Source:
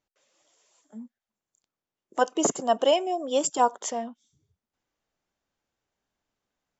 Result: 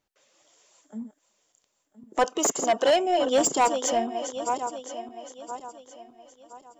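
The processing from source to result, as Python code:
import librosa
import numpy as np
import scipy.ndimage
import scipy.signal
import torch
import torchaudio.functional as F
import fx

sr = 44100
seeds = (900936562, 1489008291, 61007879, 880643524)

y = fx.reverse_delay_fb(x, sr, ms=509, feedback_pct=56, wet_db=-10)
y = 10.0 ** (-19.5 / 20.0) * np.tanh(y / 10.0 ** (-19.5 / 20.0))
y = fx.highpass(y, sr, hz=fx.line((2.37, 680.0), (2.91, 220.0)), slope=6, at=(2.37, 2.91), fade=0.02)
y = y * librosa.db_to_amplitude(5.0)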